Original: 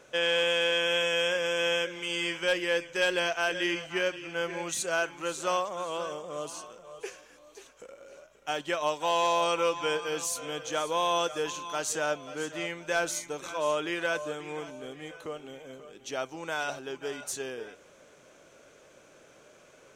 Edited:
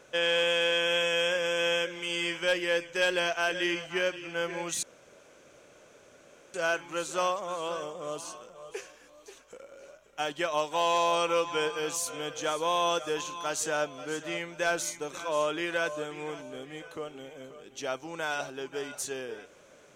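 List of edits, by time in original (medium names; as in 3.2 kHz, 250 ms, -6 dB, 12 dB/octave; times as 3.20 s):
4.83 s: insert room tone 1.71 s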